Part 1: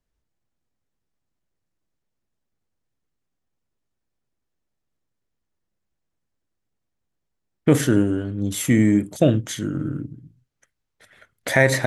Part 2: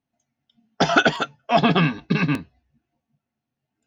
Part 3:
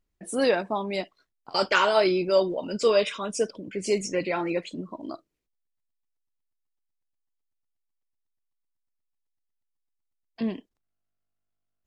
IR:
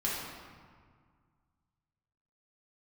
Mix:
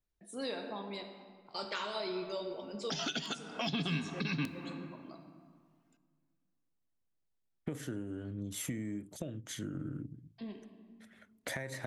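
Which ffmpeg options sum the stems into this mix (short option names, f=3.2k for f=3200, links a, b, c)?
-filter_complex "[0:a]acompressor=threshold=-25dB:ratio=16,volume=-10dB[a];[1:a]highpass=f=380:p=1,adelay=2100,volume=1.5dB,asplit=2[b][c];[c]volume=-21.5dB[d];[2:a]equalizer=f=3.8k:w=6.9:g=12,volume=-18dB,asplit=2[e][f];[f]volume=-7.5dB[g];[3:a]atrim=start_sample=2205[h];[d][g]amix=inputs=2:normalize=0[i];[i][h]afir=irnorm=-1:irlink=0[j];[a][b][e][j]amix=inputs=4:normalize=0,acrossover=split=270|3000[k][l][m];[l]acompressor=threshold=-36dB:ratio=6[n];[k][n][m]amix=inputs=3:normalize=0,alimiter=level_in=1dB:limit=-24dB:level=0:latency=1:release=240,volume=-1dB"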